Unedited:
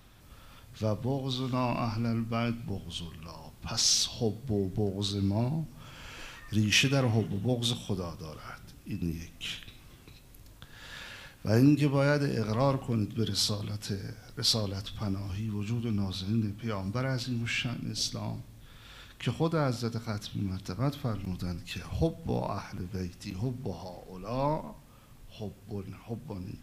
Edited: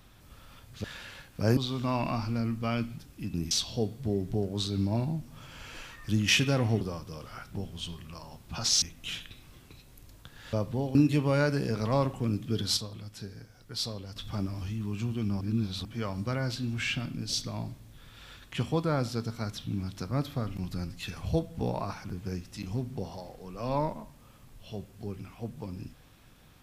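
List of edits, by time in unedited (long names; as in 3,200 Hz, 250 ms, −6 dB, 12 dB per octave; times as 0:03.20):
0:00.84–0:01.26: swap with 0:10.90–0:11.63
0:02.67–0:03.95: swap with 0:08.66–0:09.19
0:07.25–0:07.93: remove
0:13.45–0:14.84: clip gain −7 dB
0:16.09–0:16.53: reverse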